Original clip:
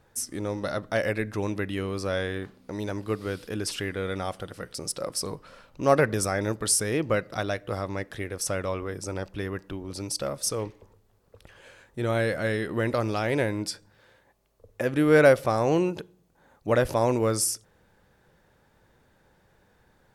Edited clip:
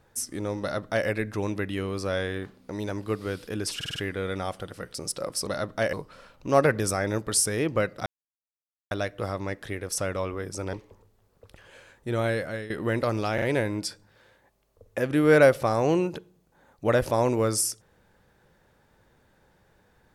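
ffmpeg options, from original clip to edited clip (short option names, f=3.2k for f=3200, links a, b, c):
-filter_complex "[0:a]asplit=12[a][b][c][d][e][f][g][h][i][j][k][l];[a]atrim=end=3.812[m];[b]atrim=start=3.758:end=3.812[n];[c]atrim=start=3.758:end=3.812[o];[d]atrim=start=3.758:end=3.812[p];[e]atrim=start=3.758:end=5.272[q];[f]atrim=start=0.608:end=1.072[r];[g]atrim=start=5.268:end=7.4,asetpts=PTS-STARTPTS,afade=t=out:st=2.128:d=0.004:c=hsin,apad=pad_dur=0.85[s];[h]atrim=start=7.4:end=9.222,asetpts=PTS-STARTPTS,afade=t=in:d=0.004:c=hsin[t];[i]atrim=start=10.638:end=12.61,asetpts=PTS-STARTPTS,afade=t=out:st=1.352:d=0.62:c=qsin:silence=0.199526[u];[j]atrim=start=12.61:end=13.292,asetpts=PTS-STARTPTS,afade=t=in:d=0.004:c=hsin:silence=0.199526[v];[k]atrim=start=13.248:end=13.292[w];[l]atrim=start=13.248[x];[m][n]acrossfade=d=0.004:c1=hsin:c2=hsin[y];[y][o]acrossfade=d=0.004:c1=hsin:c2=hsin[z];[z][p]acrossfade=d=0.004:c1=hsin:c2=hsin[aa];[aa][q]acrossfade=d=0.004:c1=hsin:c2=hsin[ab];[ab][r]acrossfade=d=0.004:c1=hsin:c2=hsin[ac];[s][t]concat=n=2:v=0:a=1[ad];[ac][ad]acrossfade=d=0.004:c1=hsin:c2=hsin[ae];[u][v]concat=n=2:v=0:a=1[af];[ae][af]acrossfade=d=0.004:c1=hsin:c2=hsin[ag];[ag][w]acrossfade=d=0.004:c1=hsin:c2=hsin[ah];[ah][x]acrossfade=d=0.004:c1=hsin:c2=hsin"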